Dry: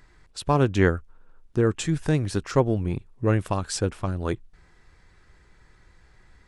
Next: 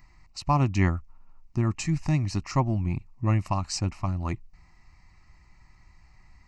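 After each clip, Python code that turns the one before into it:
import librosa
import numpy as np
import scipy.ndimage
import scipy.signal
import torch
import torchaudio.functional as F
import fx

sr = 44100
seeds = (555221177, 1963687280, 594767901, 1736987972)

y = fx.fixed_phaser(x, sr, hz=2300.0, stages=8)
y = y * librosa.db_to_amplitude(1.0)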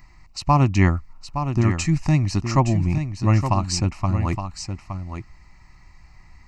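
y = x + 10.0 ** (-8.5 / 20.0) * np.pad(x, (int(867 * sr / 1000.0), 0))[:len(x)]
y = y * librosa.db_to_amplitude(6.0)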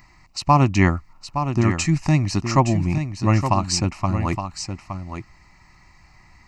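y = fx.low_shelf(x, sr, hz=86.0, db=-11.0)
y = y * librosa.db_to_amplitude(3.0)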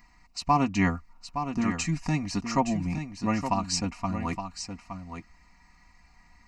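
y = x + 0.78 * np.pad(x, (int(4.2 * sr / 1000.0), 0))[:len(x)]
y = y * librosa.db_to_amplitude(-8.5)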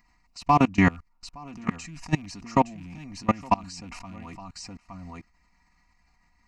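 y = fx.rattle_buzz(x, sr, strikes_db=-33.0, level_db=-32.0)
y = fx.level_steps(y, sr, step_db=24)
y = y * librosa.db_to_amplitude(7.5)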